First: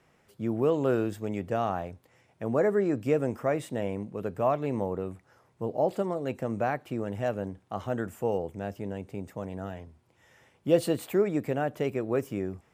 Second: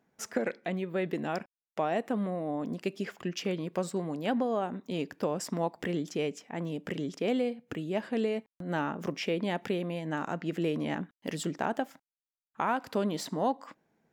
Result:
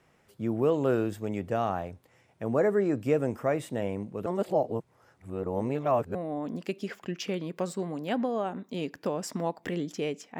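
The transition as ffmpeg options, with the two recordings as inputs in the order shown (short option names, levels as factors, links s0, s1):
-filter_complex "[0:a]apad=whole_dur=10.39,atrim=end=10.39,asplit=2[s0][s1];[s0]atrim=end=4.262[s2];[s1]atrim=start=4.258:end=6.152,asetpts=PTS-STARTPTS,areverse[s3];[1:a]atrim=start=2.318:end=6.56[s4];[s2][s3]acrossfade=d=0.004:c1=hsin:c2=hsin[s5];[s5][s4]acrossfade=d=0.004:c1=hsin:c2=hsin"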